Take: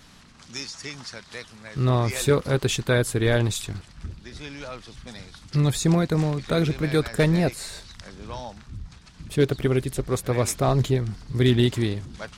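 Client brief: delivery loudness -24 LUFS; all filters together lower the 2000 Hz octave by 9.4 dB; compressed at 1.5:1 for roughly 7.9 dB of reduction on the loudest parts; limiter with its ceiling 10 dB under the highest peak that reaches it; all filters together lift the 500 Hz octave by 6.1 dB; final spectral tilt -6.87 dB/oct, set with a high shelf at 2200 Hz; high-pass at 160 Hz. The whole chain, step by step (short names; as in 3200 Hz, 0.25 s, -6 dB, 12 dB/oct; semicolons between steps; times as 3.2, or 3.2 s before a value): HPF 160 Hz; bell 500 Hz +8.5 dB; bell 2000 Hz -8.5 dB; high shelf 2200 Hz -9 dB; compressor 1.5:1, threshold -33 dBFS; gain +10 dB; limiter -12 dBFS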